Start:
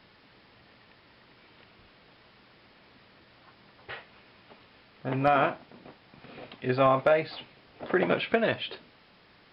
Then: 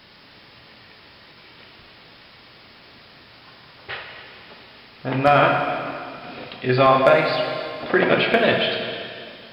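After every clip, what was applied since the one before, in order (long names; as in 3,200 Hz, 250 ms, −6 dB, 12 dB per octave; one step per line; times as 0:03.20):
high-shelf EQ 3,900 Hz +11 dB
dense smooth reverb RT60 2.3 s, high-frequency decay 1×, DRR 1.5 dB
level +6 dB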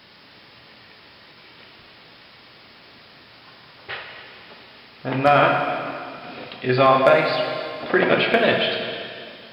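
low-shelf EQ 64 Hz −9 dB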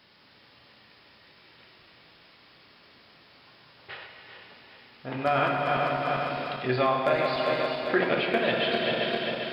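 feedback delay that plays each chunk backwards 199 ms, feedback 72%, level −7 dB
speech leveller within 5 dB 0.5 s
level −7 dB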